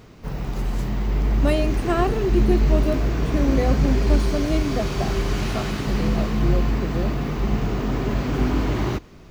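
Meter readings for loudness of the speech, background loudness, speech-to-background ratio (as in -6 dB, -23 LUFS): -27.0 LUFS, -23.5 LUFS, -3.5 dB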